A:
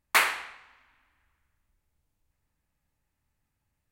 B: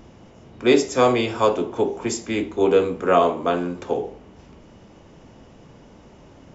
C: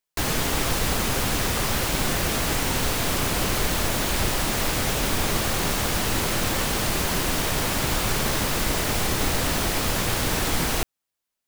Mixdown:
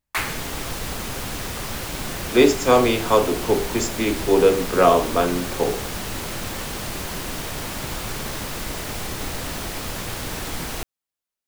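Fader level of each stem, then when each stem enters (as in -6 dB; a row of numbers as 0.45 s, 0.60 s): -4.0 dB, +1.5 dB, -5.5 dB; 0.00 s, 1.70 s, 0.00 s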